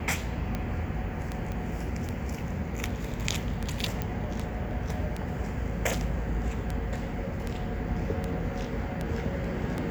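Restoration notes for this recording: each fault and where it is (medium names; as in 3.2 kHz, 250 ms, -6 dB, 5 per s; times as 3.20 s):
tick 78 rpm -18 dBFS
1.52 s: pop -23 dBFS
4.02 s: pop -17 dBFS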